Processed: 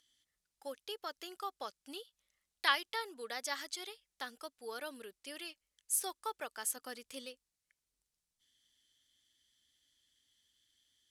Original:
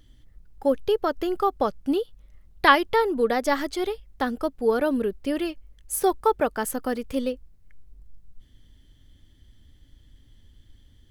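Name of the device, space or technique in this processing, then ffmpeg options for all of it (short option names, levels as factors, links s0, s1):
piezo pickup straight into a mixer: -filter_complex "[0:a]asettb=1/sr,asplit=3[s0][s1][s2];[s0]atrim=end=6.764[s3];[s1]atrim=start=6.76:end=7.26,asetpts=PTS-STARTPTS,afade=t=in:d=0.004:c=qsin,afade=t=out:st=0.496:d=0.004:c=qsin,lowshelf=f=410:g=5.5[s4];[s2]atrim=start=7.256[s5];[s3][s4]acrossfade=d=0.004:c1=hsin:c2=qsin[s6];[s6][s5]acrossfade=d=0.004:c1=qsin:c2=hsin,lowpass=8300,aderivative"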